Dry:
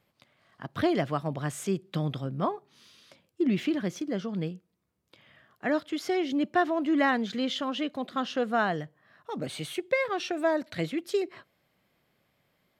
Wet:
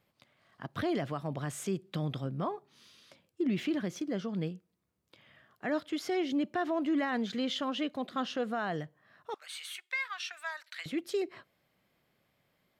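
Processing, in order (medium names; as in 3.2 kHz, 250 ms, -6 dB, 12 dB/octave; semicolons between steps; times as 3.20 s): 9.34–10.86 s: high-pass 1.2 kHz 24 dB/octave; peak limiter -21 dBFS, peak gain reduction 7.5 dB; trim -2.5 dB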